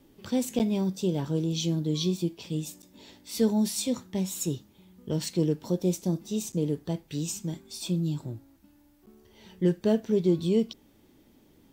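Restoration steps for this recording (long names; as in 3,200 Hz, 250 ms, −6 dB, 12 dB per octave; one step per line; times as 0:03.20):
repair the gap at 0:00.59/0:02.82/0:06.52/0:09.06, 8.8 ms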